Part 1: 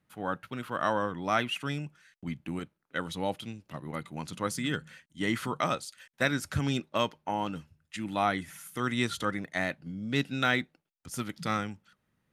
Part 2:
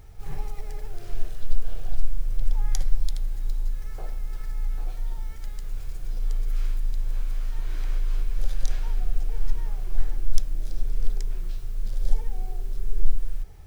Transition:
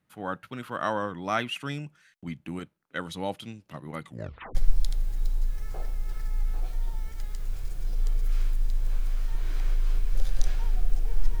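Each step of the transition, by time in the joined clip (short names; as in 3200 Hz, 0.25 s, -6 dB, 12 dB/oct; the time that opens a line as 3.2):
part 1
4.05 tape stop 0.50 s
4.55 switch to part 2 from 2.79 s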